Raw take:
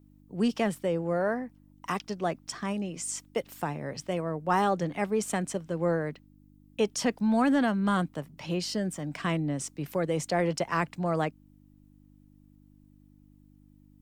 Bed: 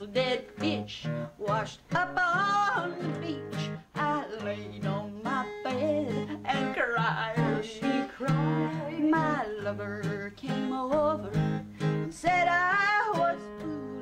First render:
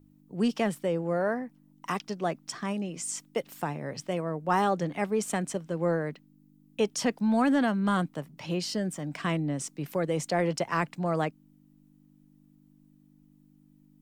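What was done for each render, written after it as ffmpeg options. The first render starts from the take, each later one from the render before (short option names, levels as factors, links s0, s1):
-af "bandreject=f=50:t=h:w=4,bandreject=f=100:t=h:w=4"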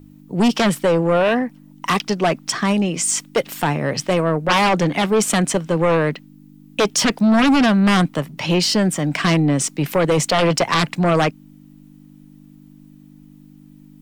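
-filter_complex "[0:a]acrossover=split=3400[s0][s1];[s0]crystalizer=i=3.5:c=0[s2];[s2][s1]amix=inputs=2:normalize=0,aeval=exprs='0.282*sin(PI/2*3.55*val(0)/0.282)':c=same"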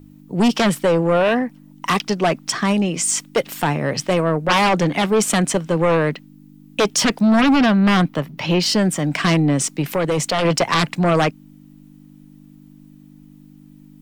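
-filter_complex "[0:a]asettb=1/sr,asplit=3[s0][s1][s2];[s0]atrim=end=7.414[s3];[s1]atrim=start=7.41:end=8.66,asetpts=PTS-STARTPTS,afade=t=in:d=0.004:c=qsin,afade=t=out:st=1.246:d=0.004:c=qsin,equalizer=f=8700:t=o:w=0.95:g=-9[s4];[s2]atrim=start=8.656[s5];[s3][s4]acrossfade=d=0.004:c1=hsin:c2=qsin[s6];[s6][s5]acrossfade=d=0.004:c1=qsin:c2=hsin,asettb=1/sr,asplit=3[s7][s8][s9];[s7]atrim=end=9.814[s10];[s8]atrim=start=9.81:end=10.45,asetpts=PTS-STARTPTS,afade=t=in:d=0.004:c=qsin,afade=t=out:st=0.636:d=0.004:c=qsin,acompressor=threshold=0.0891:ratio=1.5:attack=3.2:release=140:knee=1:detection=peak[s11];[s9]atrim=start=10.446[s12];[s10][s11]acrossfade=d=0.004:c1=hsin:c2=qsin[s13];[s13][s12]acrossfade=d=0.004:c1=qsin:c2=hsin"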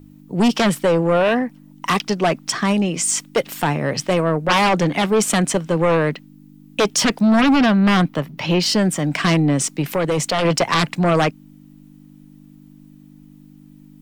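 -af anull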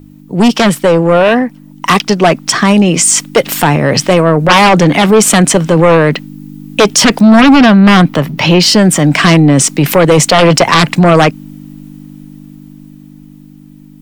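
-af "dynaudnorm=f=500:g=11:m=3.55,alimiter=level_in=2.51:limit=0.891:release=50:level=0:latency=1"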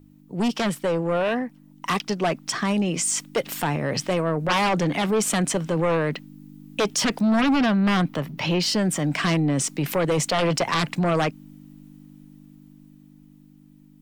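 -af "volume=0.168"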